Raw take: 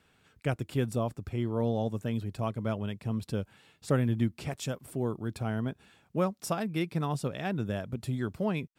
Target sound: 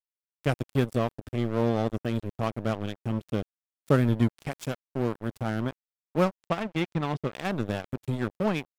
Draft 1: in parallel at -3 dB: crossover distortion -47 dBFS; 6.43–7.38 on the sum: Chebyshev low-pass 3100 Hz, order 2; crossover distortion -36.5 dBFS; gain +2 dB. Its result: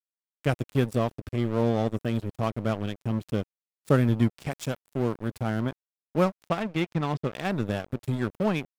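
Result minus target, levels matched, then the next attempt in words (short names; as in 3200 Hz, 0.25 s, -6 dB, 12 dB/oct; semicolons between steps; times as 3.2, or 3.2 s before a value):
first crossover distortion: distortion -11 dB
in parallel at -3 dB: crossover distortion -35.5 dBFS; 6.43–7.38 on the sum: Chebyshev low-pass 3100 Hz, order 2; crossover distortion -36.5 dBFS; gain +2 dB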